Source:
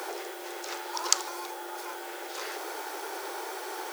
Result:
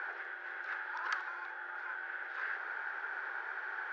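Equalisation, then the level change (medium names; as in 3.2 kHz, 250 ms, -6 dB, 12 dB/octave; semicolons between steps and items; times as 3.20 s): band-pass filter 1.6 kHz, Q 7.2; distance through air 230 m; +10.5 dB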